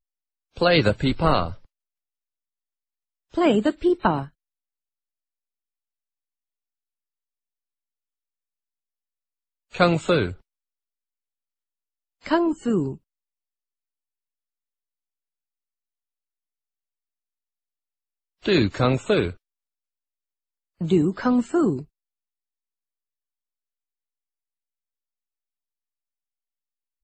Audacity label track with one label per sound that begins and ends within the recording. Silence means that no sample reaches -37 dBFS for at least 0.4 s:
0.570000	1.540000	sound
3.340000	4.270000	sound
9.740000	10.340000	sound
12.260000	12.960000	sound
18.450000	19.330000	sound
20.810000	21.830000	sound